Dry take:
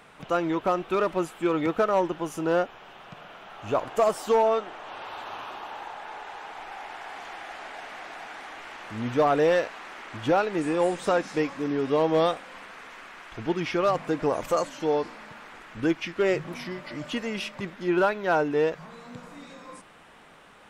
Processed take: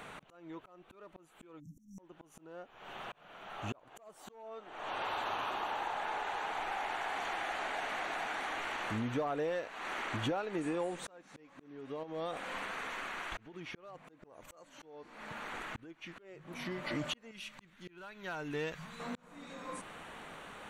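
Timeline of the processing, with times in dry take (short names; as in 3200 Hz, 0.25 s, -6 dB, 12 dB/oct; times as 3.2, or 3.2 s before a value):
1.6–1.99 spectral delete 280–5400 Hz
12.03–13.54 compressor, threshold -27 dBFS
17.31–19 bell 510 Hz -14.5 dB 2.8 oct
whole clip: notch 5100 Hz, Q 5.8; compressor 10:1, threshold -36 dBFS; auto swell 0.755 s; gain +3.5 dB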